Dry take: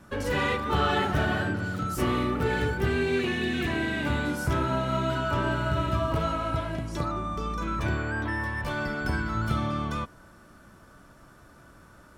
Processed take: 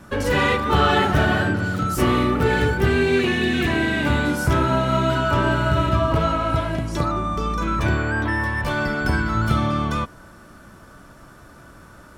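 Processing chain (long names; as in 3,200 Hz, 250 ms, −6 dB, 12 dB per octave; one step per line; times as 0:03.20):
0:05.89–0:06.50: high-shelf EQ 7,900 Hz −7 dB
level +7.5 dB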